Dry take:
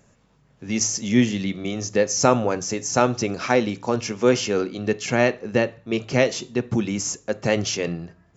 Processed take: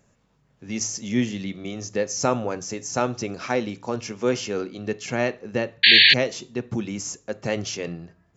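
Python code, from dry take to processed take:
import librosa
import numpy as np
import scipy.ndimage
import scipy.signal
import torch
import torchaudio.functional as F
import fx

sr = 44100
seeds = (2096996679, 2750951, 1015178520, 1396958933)

y = fx.spec_paint(x, sr, seeds[0], shape='noise', start_s=5.83, length_s=0.31, low_hz=1600.0, high_hz=4600.0, level_db=-8.0)
y = y * librosa.db_to_amplitude(-5.0)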